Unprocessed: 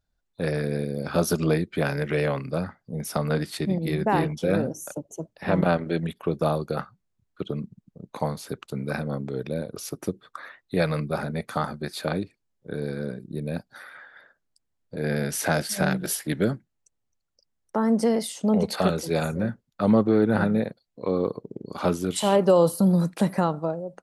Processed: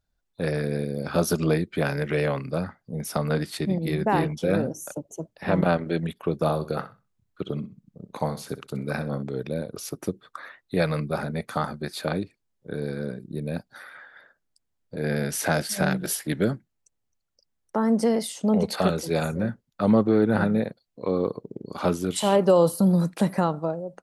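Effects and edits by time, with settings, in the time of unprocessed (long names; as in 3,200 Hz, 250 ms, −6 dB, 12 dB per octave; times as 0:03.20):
0:06.34–0:09.23: flutter between parallel walls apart 10.8 metres, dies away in 0.28 s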